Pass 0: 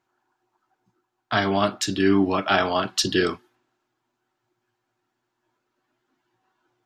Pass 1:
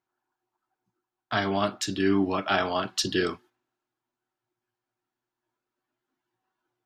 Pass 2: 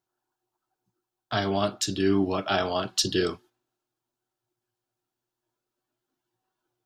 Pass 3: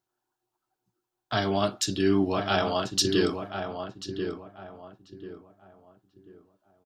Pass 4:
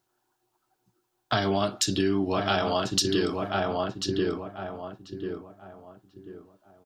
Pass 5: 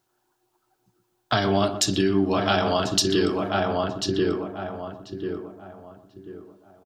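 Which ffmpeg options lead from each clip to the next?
ffmpeg -i in.wav -af "agate=range=-6dB:threshold=-47dB:ratio=16:detection=peak,volume=-4.5dB" out.wav
ffmpeg -i in.wav -af "equalizer=frequency=250:width_type=o:width=1:gain=-5,equalizer=frequency=1000:width_type=o:width=1:gain=-5,equalizer=frequency=2000:width_type=o:width=1:gain=-8,volume=4dB" out.wav
ffmpeg -i in.wav -filter_complex "[0:a]asplit=2[link_01][link_02];[link_02]adelay=1039,lowpass=frequency=1600:poles=1,volume=-6.5dB,asplit=2[link_03][link_04];[link_04]adelay=1039,lowpass=frequency=1600:poles=1,volume=0.32,asplit=2[link_05][link_06];[link_06]adelay=1039,lowpass=frequency=1600:poles=1,volume=0.32,asplit=2[link_07][link_08];[link_08]adelay=1039,lowpass=frequency=1600:poles=1,volume=0.32[link_09];[link_01][link_03][link_05][link_07][link_09]amix=inputs=5:normalize=0" out.wav
ffmpeg -i in.wav -af "acompressor=threshold=-30dB:ratio=6,volume=8dB" out.wav
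ffmpeg -i in.wav -filter_complex "[0:a]asplit=2[link_01][link_02];[link_02]adelay=122,lowpass=frequency=910:poles=1,volume=-8dB,asplit=2[link_03][link_04];[link_04]adelay=122,lowpass=frequency=910:poles=1,volume=0.33,asplit=2[link_05][link_06];[link_06]adelay=122,lowpass=frequency=910:poles=1,volume=0.33,asplit=2[link_07][link_08];[link_08]adelay=122,lowpass=frequency=910:poles=1,volume=0.33[link_09];[link_01][link_03][link_05][link_07][link_09]amix=inputs=5:normalize=0,volume=3dB" out.wav

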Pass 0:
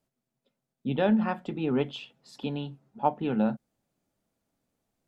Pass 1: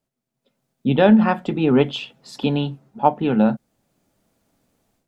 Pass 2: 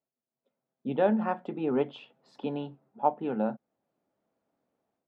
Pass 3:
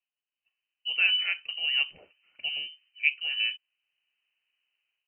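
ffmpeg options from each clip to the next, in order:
ffmpeg -i in.wav -af "dynaudnorm=framelen=330:gausssize=3:maxgain=13dB" out.wav
ffmpeg -i in.wav -af "bandpass=frequency=640:width_type=q:width=0.68:csg=0,volume=-8.5dB" out.wav
ffmpeg -i in.wav -af "lowpass=frequency=2700:width_type=q:width=0.5098,lowpass=frequency=2700:width_type=q:width=0.6013,lowpass=frequency=2700:width_type=q:width=0.9,lowpass=frequency=2700:width_type=q:width=2.563,afreqshift=-3200" out.wav

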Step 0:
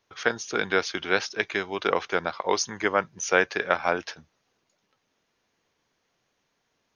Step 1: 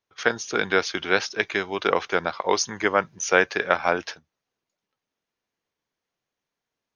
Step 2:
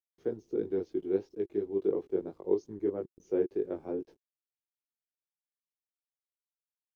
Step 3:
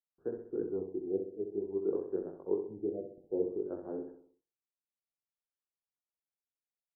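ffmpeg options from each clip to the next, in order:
ffmpeg -i in.wav -af "agate=range=-14dB:threshold=-41dB:ratio=16:detection=peak,volume=2.5dB" out.wav
ffmpeg -i in.wav -af "flanger=delay=18.5:depth=2.3:speed=3,aeval=exprs='val(0)*gte(abs(val(0)),0.00841)':channel_layout=same,firequalizer=gain_entry='entry(210,0);entry(360,10);entry(600,-12);entry(1400,-29)':delay=0.05:min_phase=1,volume=-5.5dB" out.wav
ffmpeg -i in.wav -af "aecho=1:1:64|128|192|256|320|384:0.447|0.21|0.0987|0.0464|0.0218|0.0102,afftfilt=real='re*lt(b*sr/1024,750*pow(1900/750,0.5+0.5*sin(2*PI*0.57*pts/sr)))':imag='im*lt(b*sr/1024,750*pow(1900/750,0.5+0.5*sin(2*PI*0.57*pts/sr)))':win_size=1024:overlap=0.75,volume=-4.5dB" out.wav

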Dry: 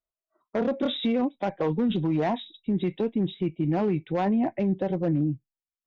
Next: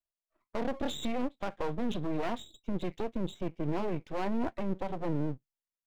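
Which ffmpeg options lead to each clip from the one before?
ffmpeg -i in.wav -af "aeval=exprs='max(val(0),0)':channel_layout=same,volume=-3dB" out.wav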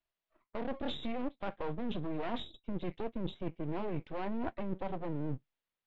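ffmpeg -i in.wav -af "lowpass=frequency=3800:width=0.5412,lowpass=frequency=3800:width=1.3066,areverse,acompressor=threshold=-40dB:ratio=5,areverse,volume=7dB" out.wav

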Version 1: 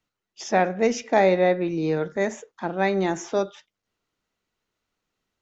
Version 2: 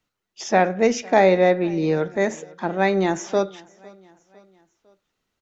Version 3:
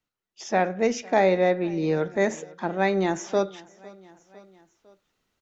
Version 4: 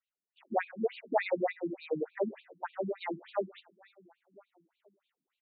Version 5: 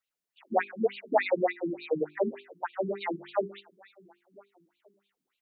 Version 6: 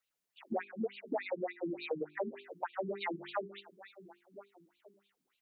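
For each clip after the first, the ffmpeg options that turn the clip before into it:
ffmpeg -i in.wav -af "aecho=1:1:504|1008|1512:0.0631|0.0303|0.0145,volume=3dB" out.wav
ffmpeg -i in.wav -af "dynaudnorm=framelen=300:gausssize=3:maxgain=10dB,volume=-8dB" out.wav
ffmpeg -i in.wav -af "asubboost=boost=11:cutoff=67,afftfilt=real='re*between(b*sr/1024,220*pow(3300/220,0.5+0.5*sin(2*PI*3.4*pts/sr))/1.41,220*pow(3300/220,0.5+0.5*sin(2*PI*3.4*pts/sr))*1.41)':imag='im*between(b*sr/1024,220*pow(3300/220,0.5+0.5*sin(2*PI*3.4*pts/sr))/1.41,220*pow(3300/220,0.5+0.5*sin(2*PI*3.4*pts/sr))*1.41)':win_size=1024:overlap=0.75,volume=-3dB" out.wav
ffmpeg -i in.wav -af "bandreject=frequency=50:width_type=h:width=6,bandreject=frequency=100:width_type=h:width=6,bandreject=frequency=150:width_type=h:width=6,bandreject=frequency=200:width_type=h:width=6,bandreject=frequency=250:width_type=h:width=6,bandreject=frequency=300:width_type=h:width=6,bandreject=frequency=350:width_type=h:width=6,bandreject=frequency=400:width_type=h:width=6,volume=4.5dB" out.wav
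ffmpeg -i in.wav -af "acompressor=threshold=-36dB:ratio=5,volume=1.5dB" out.wav

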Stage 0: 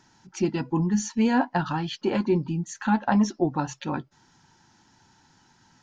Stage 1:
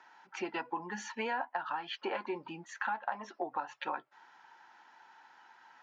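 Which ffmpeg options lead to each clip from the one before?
ffmpeg -i in.wav -filter_complex "[0:a]highpass=390,acrossover=split=560 2800:gain=0.158 1 0.0631[link_01][link_02][link_03];[link_01][link_02][link_03]amix=inputs=3:normalize=0,acompressor=threshold=-39dB:ratio=6,volume=6dB" out.wav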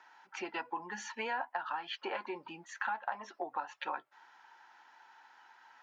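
ffmpeg -i in.wav -af "lowshelf=frequency=330:gain=-9" out.wav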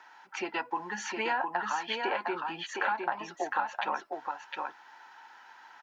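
ffmpeg -i in.wav -af "aecho=1:1:710:0.631,volume=5.5dB" out.wav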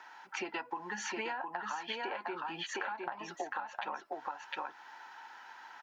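ffmpeg -i in.wav -af "acompressor=threshold=-37dB:ratio=6,volume=1.5dB" out.wav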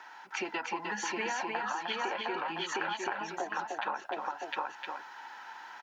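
ffmpeg -i in.wav -af "aecho=1:1:306:0.631,volume=3dB" out.wav

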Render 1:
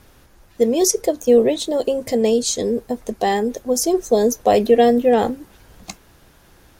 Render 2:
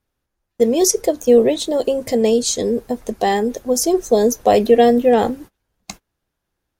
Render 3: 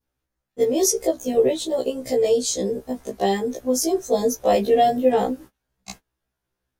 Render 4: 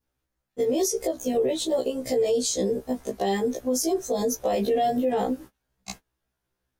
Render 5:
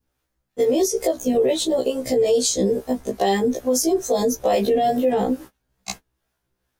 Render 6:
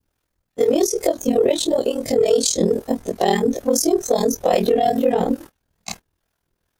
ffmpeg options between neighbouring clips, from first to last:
ffmpeg -i in.wav -af "agate=range=-28dB:threshold=-37dB:ratio=16:detection=peak,volume=1.5dB" out.wav
ffmpeg -i in.wav -af "adynamicequalizer=threshold=0.0251:dfrequency=2000:dqfactor=0.8:tfrequency=2000:tqfactor=0.8:attack=5:release=100:ratio=0.375:range=2:mode=cutabove:tftype=bell,afftfilt=real='re*1.73*eq(mod(b,3),0)':imag='im*1.73*eq(mod(b,3),0)':win_size=2048:overlap=0.75,volume=-1.5dB" out.wav
ffmpeg -i in.wav -af "alimiter=limit=-16.5dB:level=0:latency=1:release=75" out.wav
ffmpeg -i in.wav -filter_complex "[0:a]acrossover=split=400[link_01][link_02];[link_01]aeval=exprs='val(0)*(1-0.5/2+0.5/2*cos(2*PI*2.3*n/s))':channel_layout=same[link_03];[link_02]aeval=exprs='val(0)*(1-0.5/2-0.5/2*cos(2*PI*2.3*n/s))':channel_layout=same[link_04];[link_03][link_04]amix=inputs=2:normalize=0,volume=7.5dB" out.wav
ffmpeg -i in.wav -af "aeval=exprs='val(0)*sin(2*PI*20*n/s)':channel_layout=same,aeval=exprs='0.355*(cos(1*acos(clip(val(0)/0.355,-1,1)))-cos(1*PI/2))+0.0224*(cos(2*acos(clip(val(0)/0.355,-1,1)))-cos(2*PI/2))+0.0158*(cos(3*acos(clip(val(0)/0.355,-1,1)))-cos(3*PI/2))+0.00631*(cos(4*acos(clip(val(0)/0.355,-1,1)))-cos(4*PI/2))':channel_layout=same,volume=5.5dB" out.wav

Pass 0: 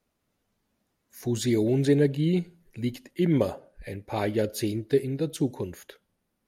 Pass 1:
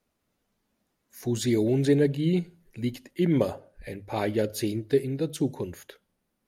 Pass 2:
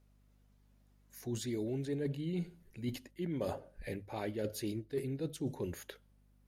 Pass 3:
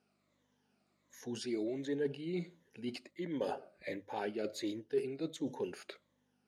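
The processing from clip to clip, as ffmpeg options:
ffmpeg -i in.wav -af "bandreject=frequency=50:width_type=h:width=6,bandreject=frequency=100:width_type=h:width=6,bandreject=frequency=150:width_type=h:width=6" out.wav
ffmpeg -i in.wav -af "areverse,acompressor=threshold=-32dB:ratio=8,areverse,aeval=exprs='val(0)+0.000631*(sin(2*PI*50*n/s)+sin(2*PI*2*50*n/s)/2+sin(2*PI*3*50*n/s)/3+sin(2*PI*4*50*n/s)/4+sin(2*PI*5*50*n/s)/5)':channel_layout=same,volume=-2dB" out.wav
ffmpeg -i in.wav -af "afftfilt=real='re*pow(10,10/40*sin(2*PI*(1.1*log(max(b,1)*sr/1024/100)/log(2)-(-1.4)*(pts-256)/sr)))':imag='im*pow(10,10/40*sin(2*PI*(1.1*log(max(b,1)*sr/1024/100)/log(2)-(-1.4)*(pts-256)/sr)))':win_size=1024:overlap=0.75,highpass=280,lowpass=6500,volume=1dB" out.wav

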